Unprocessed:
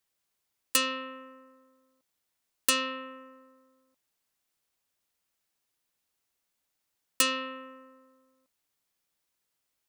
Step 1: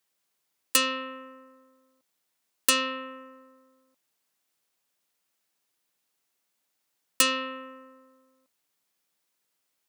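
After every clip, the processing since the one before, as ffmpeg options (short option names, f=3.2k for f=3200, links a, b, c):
-af "highpass=140,volume=3dB"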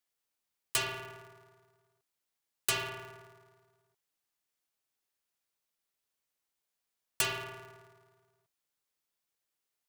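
-af "aeval=exprs='val(0)*sgn(sin(2*PI*140*n/s))':c=same,volume=-8.5dB"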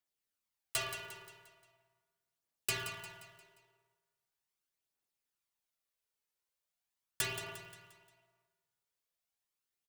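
-filter_complex "[0:a]aphaser=in_gain=1:out_gain=1:delay=2.4:decay=0.41:speed=0.4:type=triangular,asplit=2[a][b];[b]aecho=0:1:176|352|528|704|880:0.282|0.132|0.0623|0.0293|0.0138[c];[a][c]amix=inputs=2:normalize=0,volume=-5.5dB"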